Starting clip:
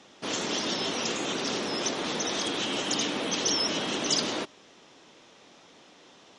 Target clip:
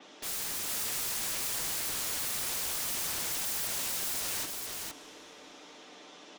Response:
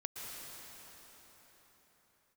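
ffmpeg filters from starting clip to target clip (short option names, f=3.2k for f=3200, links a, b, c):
-filter_complex "[0:a]highpass=f=200:w=0.5412,highpass=f=200:w=1.3066,aecho=1:1:6.7:0.4,acompressor=threshold=-31dB:ratio=10,aeval=exprs='(mod(56.2*val(0)+1,2)-1)/56.2':c=same,aecho=1:1:463:0.668,asplit=2[a][b];[1:a]atrim=start_sample=2205,lowpass=9k[c];[b][c]afir=irnorm=-1:irlink=0,volume=-14dB[d];[a][d]amix=inputs=2:normalize=0,adynamicequalizer=threshold=0.00251:dfrequency=5400:dqfactor=0.7:tfrequency=5400:tqfactor=0.7:attack=5:release=100:ratio=0.375:range=3:mode=boostabove:tftype=highshelf"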